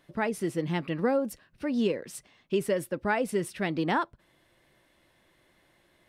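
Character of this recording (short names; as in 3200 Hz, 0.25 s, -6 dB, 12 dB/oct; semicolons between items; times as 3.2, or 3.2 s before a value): noise floor -67 dBFS; spectral tilt -5.0 dB/oct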